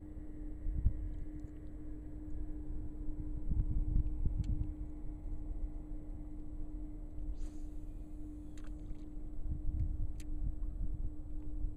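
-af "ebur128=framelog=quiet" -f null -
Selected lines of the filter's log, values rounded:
Integrated loudness:
  I:         -44.3 LUFS
  Threshold: -54.3 LUFS
Loudness range:
  LRA:         7.3 LU
  Threshold: -64.3 LUFS
  LRA low:   -49.0 LUFS
  LRA high:  -41.7 LUFS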